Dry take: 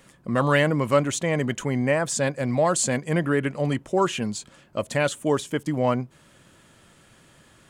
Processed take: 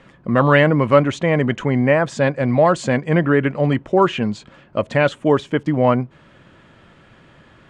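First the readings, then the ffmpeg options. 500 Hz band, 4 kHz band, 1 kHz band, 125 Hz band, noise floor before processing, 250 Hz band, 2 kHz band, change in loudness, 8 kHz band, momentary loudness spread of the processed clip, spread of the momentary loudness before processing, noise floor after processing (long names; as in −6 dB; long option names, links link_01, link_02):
+7.0 dB, +2.0 dB, +7.0 dB, +7.0 dB, −56 dBFS, +7.0 dB, +6.0 dB, +6.5 dB, −11.0 dB, 8 LU, 8 LU, −50 dBFS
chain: -af "lowpass=2800,volume=7dB"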